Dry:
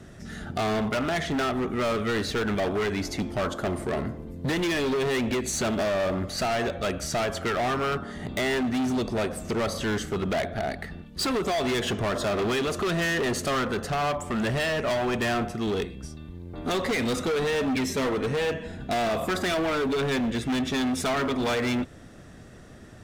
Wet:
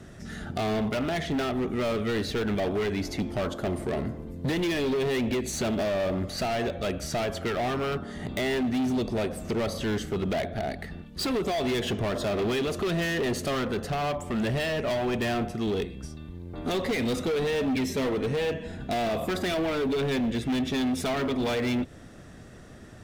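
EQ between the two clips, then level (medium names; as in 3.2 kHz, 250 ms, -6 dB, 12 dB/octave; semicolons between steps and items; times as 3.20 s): dynamic bell 1.3 kHz, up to -6 dB, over -42 dBFS, Q 1.1; dynamic bell 7.5 kHz, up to -5 dB, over -49 dBFS, Q 0.89; 0.0 dB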